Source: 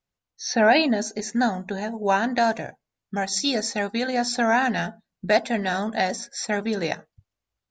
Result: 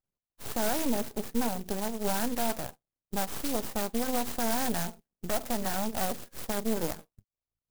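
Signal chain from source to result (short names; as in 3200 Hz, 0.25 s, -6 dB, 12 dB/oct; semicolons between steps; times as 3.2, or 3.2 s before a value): spectral gate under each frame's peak -20 dB strong; limiter -17.5 dBFS, peak gain reduction 9.5 dB; half-wave rectifier; air absorption 110 m; clock jitter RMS 0.12 ms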